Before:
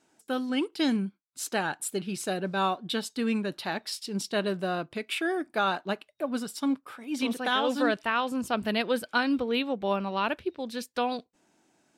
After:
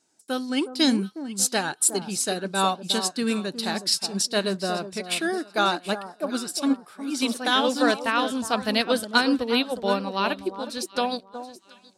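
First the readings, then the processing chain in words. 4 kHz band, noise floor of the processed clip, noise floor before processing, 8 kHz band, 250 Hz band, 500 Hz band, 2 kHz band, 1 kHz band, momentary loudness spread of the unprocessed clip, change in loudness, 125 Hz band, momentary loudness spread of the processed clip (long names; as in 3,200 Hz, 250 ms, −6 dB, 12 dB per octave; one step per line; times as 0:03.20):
+8.5 dB, −56 dBFS, −70 dBFS, +12.5 dB, +3.5 dB, +3.5 dB, +3.5 dB, +3.5 dB, 7 LU, +5.0 dB, +2.5 dB, 8 LU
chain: flat-topped bell 6,600 Hz +9.5 dB
delay that swaps between a low-pass and a high-pass 364 ms, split 1,200 Hz, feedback 56%, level −7.5 dB
expander for the loud parts 1.5 to 1, over −43 dBFS
level +5.5 dB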